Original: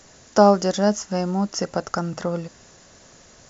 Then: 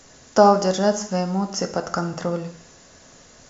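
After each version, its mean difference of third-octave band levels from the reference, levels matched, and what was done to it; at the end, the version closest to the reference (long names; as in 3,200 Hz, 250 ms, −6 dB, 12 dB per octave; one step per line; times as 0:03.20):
2.0 dB: reverb whose tail is shaped and stops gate 220 ms falling, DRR 6.5 dB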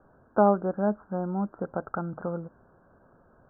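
6.0 dB: Chebyshev low-pass filter 1,600 Hz, order 8
level −6 dB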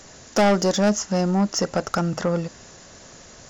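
4.0 dB: soft clipping −18 dBFS, distortion −6 dB
level +4.5 dB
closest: first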